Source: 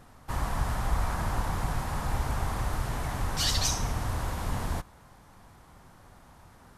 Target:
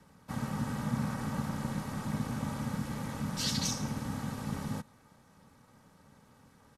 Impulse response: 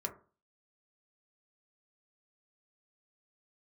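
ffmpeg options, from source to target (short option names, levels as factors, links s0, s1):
-filter_complex "[0:a]aecho=1:1:2.9:0.54,aeval=exprs='val(0)*sin(2*PI*180*n/s)':c=same,acrossover=split=130|600|7000[s0][s1][s2][s3];[s2]crystalizer=i=1:c=0[s4];[s0][s1][s4][s3]amix=inputs=4:normalize=0,volume=0.531"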